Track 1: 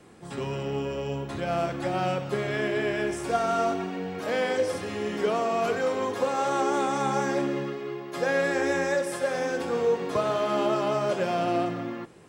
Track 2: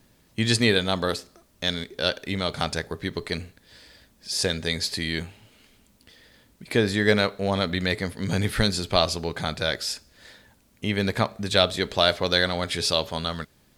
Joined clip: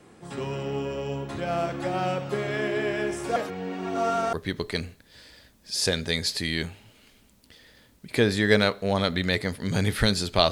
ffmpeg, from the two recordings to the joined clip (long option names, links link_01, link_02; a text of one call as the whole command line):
ffmpeg -i cue0.wav -i cue1.wav -filter_complex "[0:a]apad=whole_dur=10.51,atrim=end=10.51,asplit=2[link_01][link_02];[link_01]atrim=end=3.362[link_03];[link_02]atrim=start=3.358:end=4.332,asetpts=PTS-STARTPTS,areverse[link_04];[1:a]atrim=start=2.898:end=9.08[link_05];[link_03][link_04]acrossfade=duration=0.004:curve1=hsin:curve2=hsin[link_06];[link_06][link_05]acrossfade=duration=0.004:curve1=hsin:curve2=hsin" out.wav